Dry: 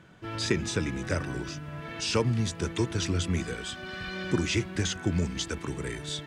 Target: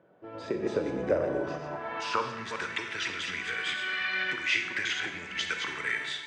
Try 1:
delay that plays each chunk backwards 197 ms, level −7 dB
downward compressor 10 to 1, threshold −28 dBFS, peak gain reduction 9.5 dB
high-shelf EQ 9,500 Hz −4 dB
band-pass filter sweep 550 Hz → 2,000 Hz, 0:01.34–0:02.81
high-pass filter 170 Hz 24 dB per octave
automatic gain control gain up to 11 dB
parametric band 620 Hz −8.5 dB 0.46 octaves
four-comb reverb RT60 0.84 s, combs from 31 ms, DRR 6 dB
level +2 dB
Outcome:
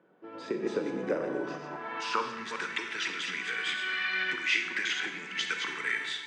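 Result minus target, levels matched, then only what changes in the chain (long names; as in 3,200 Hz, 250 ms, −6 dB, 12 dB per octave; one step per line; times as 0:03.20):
125 Hz band −5.5 dB; 500 Hz band −2.5 dB
remove: high-pass filter 170 Hz 24 dB per octave
remove: parametric band 620 Hz −8.5 dB 0.46 octaves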